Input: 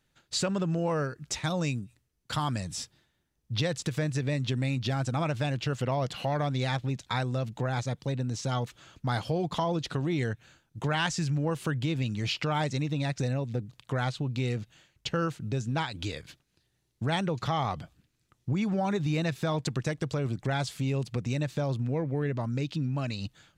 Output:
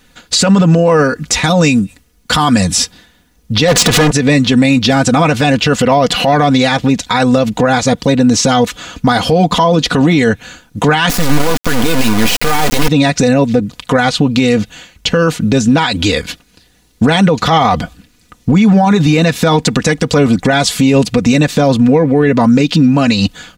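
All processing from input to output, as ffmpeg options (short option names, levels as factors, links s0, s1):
-filter_complex "[0:a]asettb=1/sr,asplit=3[s0][s1][s2];[s0]atrim=end=3.684[s3];[s1]atrim=start=3.68:end=4.11,asetpts=PTS-STARTPTS,afade=t=in:d=0.004:c=qsin,afade=t=out:st=0.426:d=0.004:c=qsin,lowshelf=f=420:g=10.5,acompressor=threshold=0.0501:ratio=4:attack=3.2:release=140:knee=1:detection=peak,asplit=2[s4][s5];[s5]highpass=f=720:p=1,volume=44.7,asoftclip=type=tanh:threshold=0.112[s6];[s4][s6]amix=inputs=2:normalize=0,lowpass=f=4500:p=1,volume=0.501[s7];[s2]atrim=start=4.106[s8];[s3][s7]acrossfade=d=0.004:c1=hsin:c2=qsin[s9];[s9][s8]acrossfade=d=0.004:c1=qsin:c2=hsin,asettb=1/sr,asplit=3[s10][s11][s12];[s10]atrim=end=11.094[s13];[s11]atrim=start=11.09:end=12.88,asetpts=PTS-STARTPTS,afade=t=in:d=0.004:c=qsin,afade=t=out:st=1.786:d=0.004:c=qsin,aeval=exprs='val(0)+0.5*0.00708*sgn(val(0))':c=same,lowpass=f=3400:p=1,acrusher=bits=3:dc=4:mix=0:aa=0.000001[s14];[s12]atrim=start=12.876[s15];[s13][s14]acrossfade=d=0.004:c1=hsin:c2=qsin[s16];[s16][s15]acrossfade=d=0.004:c1=qsin:c2=hsin,aecho=1:1:4.1:0.72,alimiter=level_in=16.8:limit=0.891:release=50:level=0:latency=1,volume=0.891"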